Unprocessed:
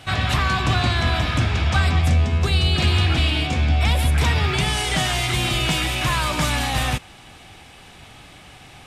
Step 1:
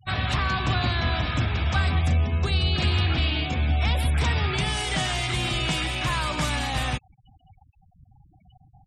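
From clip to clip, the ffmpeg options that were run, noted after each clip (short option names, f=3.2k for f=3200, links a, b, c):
-af "afftfilt=real='re*gte(hypot(re,im),0.0251)':imag='im*gte(hypot(re,im),0.0251)':win_size=1024:overlap=0.75,volume=-4.5dB"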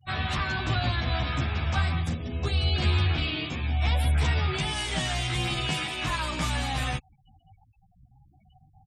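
-filter_complex "[0:a]asplit=2[a][b];[b]adelay=11.7,afreqshift=0.72[c];[a][c]amix=inputs=2:normalize=1"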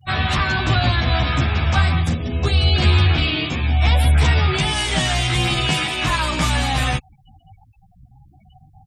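-af "acontrast=32,volume=4dB"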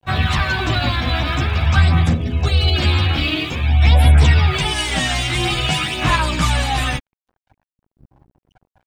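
-af "aphaser=in_gain=1:out_gain=1:delay=3.8:decay=0.41:speed=0.49:type=sinusoidal,aeval=exprs='sgn(val(0))*max(abs(val(0))-0.0075,0)':c=same"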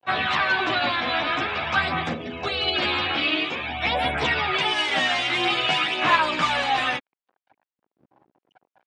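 -af "highpass=380,lowpass=3.5k"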